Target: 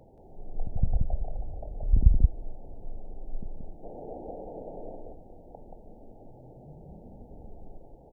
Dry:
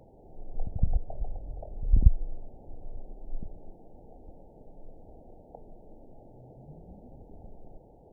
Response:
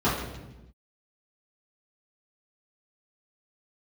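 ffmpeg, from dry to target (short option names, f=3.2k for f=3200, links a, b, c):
-filter_complex "[0:a]asplit=3[a][b][c];[a]afade=t=out:st=3.82:d=0.02[d];[b]equalizer=f=540:t=o:w=2.8:g=14,afade=t=in:st=3.82:d=0.02,afade=t=out:st=4.95:d=0.02[e];[c]afade=t=in:st=4.95:d=0.02[f];[d][e][f]amix=inputs=3:normalize=0,asplit=2[g][h];[h]aecho=0:1:178:0.708[i];[g][i]amix=inputs=2:normalize=0"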